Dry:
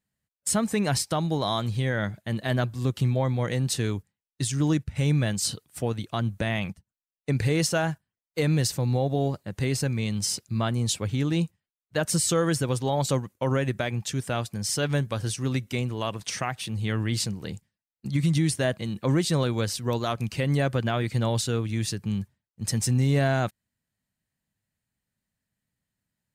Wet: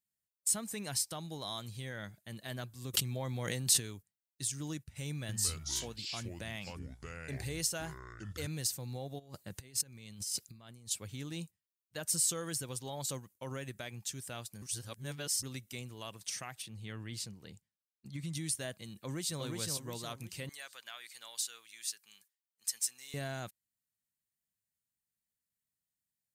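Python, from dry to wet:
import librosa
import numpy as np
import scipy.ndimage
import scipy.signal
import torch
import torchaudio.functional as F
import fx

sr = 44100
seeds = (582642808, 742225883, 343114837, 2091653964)

y = fx.env_flatten(x, sr, amount_pct=100, at=(2.93, 3.79), fade=0.02)
y = fx.echo_pitch(y, sr, ms=188, semitones=-5, count=2, db_per_echo=-3.0, at=(5.1, 8.47))
y = fx.over_compress(y, sr, threshold_db=-32.0, ratio=-0.5, at=(9.18, 10.9), fade=0.02)
y = fx.high_shelf(y, sr, hz=5400.0, db=-11.0, at=(16.62, 18.33))
y = fx.echo_throw(y, sr, start_s=18.93, length_s=0.48, ms=360, feedback_pct=40, wet_db=-3.0)
y = fx.highpass(y, sr, hz=1300.0, slope=12, at=(20.49, 23.14))
y = fx.edit(y, sr, fx.reverse_span(start_s=14.62, length_s=0.81), tone=tone)
y = scipy.signal.lfilter([1.0, -0.8], [1.0], y)
y = F.gain(torch.from_numpy(y), -3.5).numpy()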